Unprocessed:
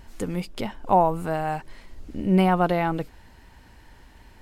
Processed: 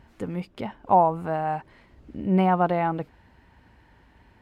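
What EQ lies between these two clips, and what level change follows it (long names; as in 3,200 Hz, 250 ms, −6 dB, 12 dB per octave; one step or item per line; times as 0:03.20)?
high-pass filter 65 Hz 12 dB per octave
bass and treble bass +2 dB, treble −13 dB
dynamic equaliser 830 Hz, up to +5 dB, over −36 dBFS, Q 1.3
−3.5 dB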